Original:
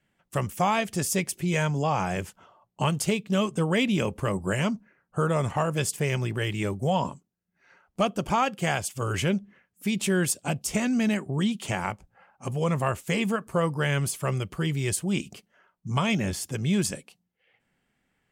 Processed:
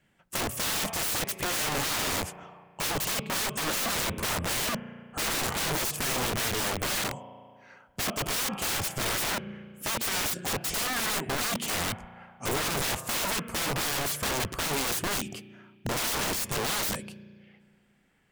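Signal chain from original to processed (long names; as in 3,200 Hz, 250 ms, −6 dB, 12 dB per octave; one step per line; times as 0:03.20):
spring reverb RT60 1.9 s, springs 34 ms, chirp 40 ms, DRR 19 dB
wrap-around overflow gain 29 dB
level +4.5 dB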